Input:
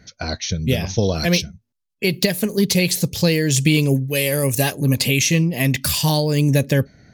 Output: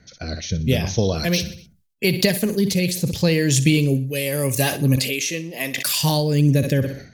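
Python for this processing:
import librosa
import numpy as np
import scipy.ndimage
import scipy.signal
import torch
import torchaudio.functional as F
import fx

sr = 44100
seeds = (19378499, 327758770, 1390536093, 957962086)

y = fx.high_shelf(x, sr, hz=12000.0, db=9.0, at=(1.24, 2.12))
y = fx.rotary(y, sr, hz=0.8)
y = fx.high_shelf(y, sr, hz=5000.0, db=-6.0, at=(2.98, 3.39))
y = fx.highpass(y, sr, hz=400.0, slope=12, at=(4.96, 6.0))
y = fx.echo_feedback(y, sr, ms=61, feedback_pct=45, wet_db=-16.0)
y = fx.sustainer(y, sr, db_per_s=100.0)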